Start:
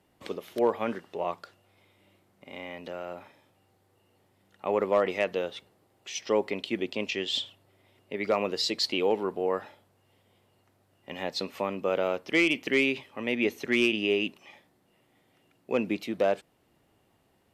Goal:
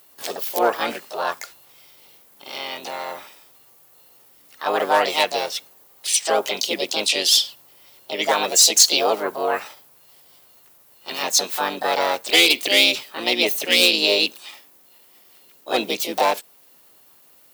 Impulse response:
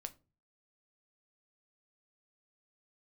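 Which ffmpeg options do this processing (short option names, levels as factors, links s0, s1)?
-filter_complex "[0:a]asplit=3[s0][s1][s2];[s1]asetrate=55563,aresample=44100,atempo=0.793701,volume=0.447[s3];[s2]asetrate=66075,aresample=44100,atempo=0.66742,volume=0.891[s4];[s0][s3][s4]amix=inputs=3:normalize=0,aemphasis=mode=production:type=riaa,acontrast=47,volume=0.891"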